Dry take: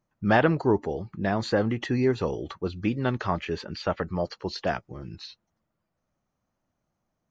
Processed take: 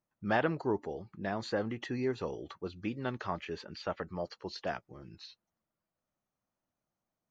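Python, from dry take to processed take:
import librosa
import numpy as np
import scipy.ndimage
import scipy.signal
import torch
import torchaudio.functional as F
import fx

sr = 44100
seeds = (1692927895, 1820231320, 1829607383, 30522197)

y = fx.low_shelf(x, sr, hz=160.0, db=-7.0)
y = F.gain(torch.from_numpy(y), -8.0).numpy()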